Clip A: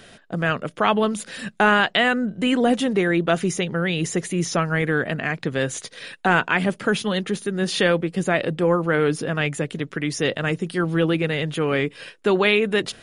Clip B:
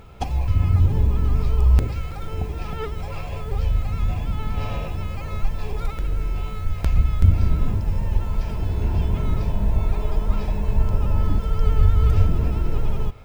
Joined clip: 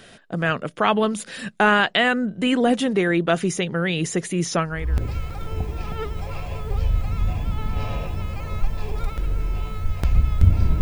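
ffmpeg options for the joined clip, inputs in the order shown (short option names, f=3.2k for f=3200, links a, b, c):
-filter_complex "[0:a]apad=whole_dur=10.81,atrim=end=10.81,atrim=end=5.1,asetpts=PTS-STARTPTS[a];[1:a]atrim=start=1.39:end=7.62,asetpts=PTS-STARTPTS[b];[a][b]acrossfade=d=0.52:c1=qua:c2=qua"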